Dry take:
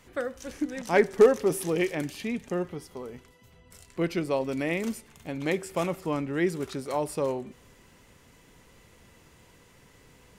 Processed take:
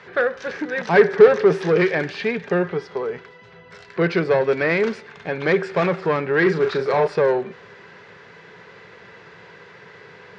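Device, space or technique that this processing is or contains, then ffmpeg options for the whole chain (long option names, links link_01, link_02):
overdrive pedal into a guitar cabinet: -filter_complex "[0:a]asettb=1/sr,asplit=3[link_01][link_02][link_03];[link_01]atrim=end=6.384[link_04];[link_02]atrim=start=6.38:end=7.07,asetpts=PTS-STARTPTS,afade=type=in:duration=0.004:curve=qsin,afade=type=out:start_time=0.686:duration=0.004:curve=qsin,asplit=2[link_05][link_06];[link_06]adelay=38,volume=-6.5dB[link_07];[link_05][link_07]amix=inputs=2:normalize=0,atrim=end_sample=30429[link_08];[link_03]atrim=start=7.066[link_09];[link_04][link_08]acrossfade=duration=0.004:curve1=hsin:curve2=qsin[link_10];[link_10][link_09]acrossfade=duration=0.004:curve1=qsin:curve2=hsin,asplit=2[link_11][link_12];[link_12]highpass=frequency=720:poles=1,volume=22dB,asoftclip=type=tanh:threshold=-9.5dB[link_13];[link_11][link_13]amix=inputs=2:normalize=0,lowpass=frequency=3600:poles=1,volume=-6dB,highpass=78,equalizer=frequency=110:width_type=q:width=4:gain=6,equalizer=frequency=170:width_type=q:width=4:gain=9,equalizer=frequency=270:width_type=q:width=4:gain=-9,equalizer=frequency=420:width_type=q:width=4:gain=9,equalizer=frequency=1600:width_type=q:width=4:gain=8,equalizer=frequency=3000:width_type=q:width=4:gain=-5,lowpass=frequency=4600:width=0.5412,lowpass=frequency=4600:width=1.3066,volume=-1dB"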